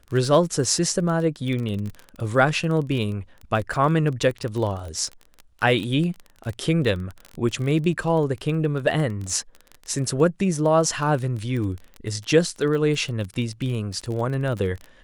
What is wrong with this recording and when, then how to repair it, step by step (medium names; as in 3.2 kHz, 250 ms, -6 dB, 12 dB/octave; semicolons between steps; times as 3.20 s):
crackle 24 per s -28 dBFS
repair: de-click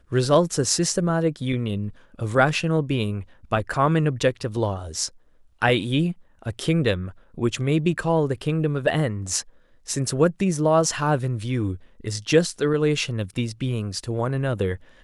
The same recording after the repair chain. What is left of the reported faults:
nothing left